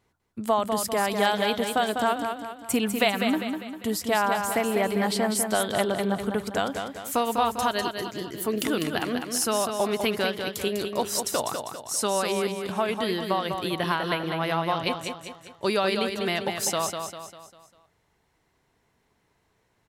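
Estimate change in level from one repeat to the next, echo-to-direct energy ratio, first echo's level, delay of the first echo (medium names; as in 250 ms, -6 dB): -7.0 dB, -5.0 dB, -6.0 dB, 199 ms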